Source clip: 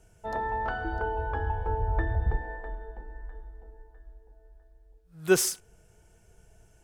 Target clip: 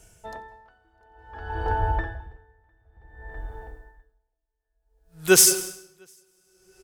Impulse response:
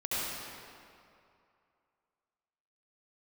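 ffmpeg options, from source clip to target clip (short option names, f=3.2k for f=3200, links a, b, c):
-filter_complex "[0:a]highshelf=f=2.3k:g=10.5,aecho=1:1:703:0.562,asplit=2[a][b];[1:a]atrim=start_sample=2205,adelay=91[c];[b][c]afir=irnorm=-1:irlink=0,volume=-14.5dB[d];[a][d]amix=inputs=2:normalize=0,aeval=exprs='val(0)*pow(10,-36*(0.5-0.5*cos(2*PI*0.56*n/s))/20)':c=same,volume=3.5dB"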